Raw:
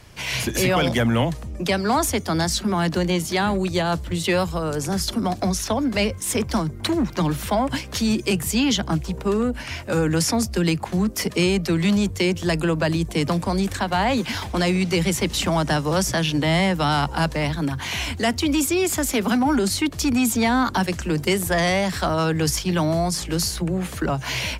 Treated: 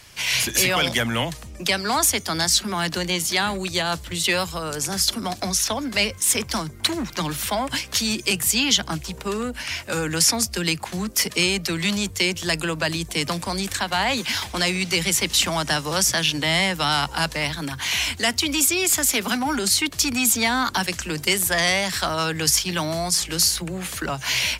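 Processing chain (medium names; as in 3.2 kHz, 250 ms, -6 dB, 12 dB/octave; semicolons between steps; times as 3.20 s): tilt shelf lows -7 dB, about 1.2 kHz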